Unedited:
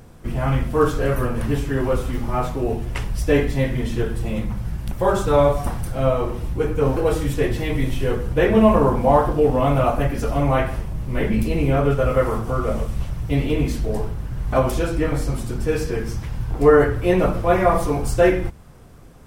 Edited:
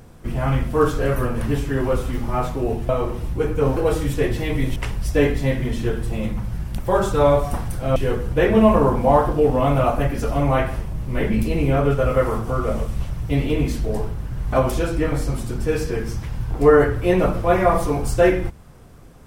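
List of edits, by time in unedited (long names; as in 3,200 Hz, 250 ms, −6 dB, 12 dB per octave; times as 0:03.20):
0:06.09–0:07.96: move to 0:02.89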